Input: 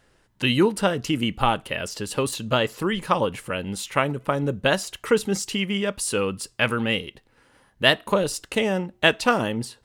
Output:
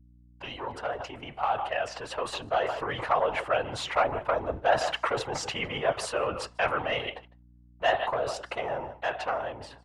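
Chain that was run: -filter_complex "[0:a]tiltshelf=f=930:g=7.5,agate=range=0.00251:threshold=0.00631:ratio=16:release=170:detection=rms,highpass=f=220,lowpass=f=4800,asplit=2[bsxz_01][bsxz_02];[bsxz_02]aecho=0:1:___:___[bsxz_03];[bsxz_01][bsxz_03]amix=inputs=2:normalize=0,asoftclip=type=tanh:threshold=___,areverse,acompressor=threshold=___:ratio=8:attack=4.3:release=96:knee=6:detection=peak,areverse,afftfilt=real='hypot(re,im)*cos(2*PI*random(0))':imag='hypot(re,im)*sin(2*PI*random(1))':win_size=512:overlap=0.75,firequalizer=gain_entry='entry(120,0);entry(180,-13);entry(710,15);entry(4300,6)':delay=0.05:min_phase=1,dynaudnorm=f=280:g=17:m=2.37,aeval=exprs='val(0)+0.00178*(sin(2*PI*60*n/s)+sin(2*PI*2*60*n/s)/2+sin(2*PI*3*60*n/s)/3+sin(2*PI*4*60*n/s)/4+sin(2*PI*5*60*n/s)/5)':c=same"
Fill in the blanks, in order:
154, 0.0708, 0.299, 0.0282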